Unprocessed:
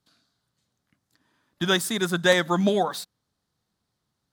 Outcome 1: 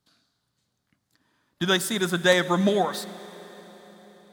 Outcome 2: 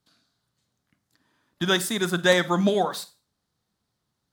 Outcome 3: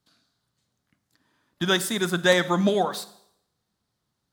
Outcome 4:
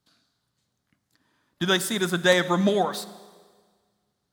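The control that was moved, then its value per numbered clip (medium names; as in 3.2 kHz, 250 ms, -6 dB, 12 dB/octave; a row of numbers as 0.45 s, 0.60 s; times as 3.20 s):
Schroeder reverb, RT60: 4.5 s, 0.34 s, 0.73 s, 1.6 s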